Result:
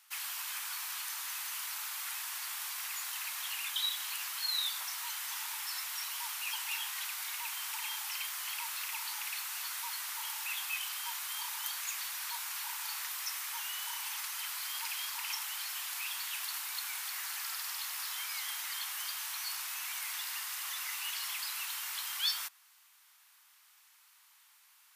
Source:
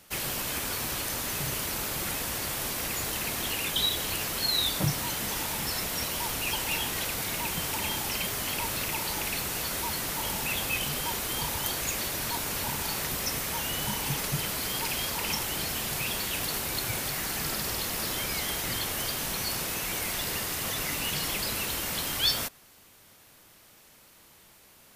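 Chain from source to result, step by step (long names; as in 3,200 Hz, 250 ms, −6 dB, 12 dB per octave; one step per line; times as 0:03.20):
Butterworth high-pass 920 Hz 36 dB per octave
level −6.5 dB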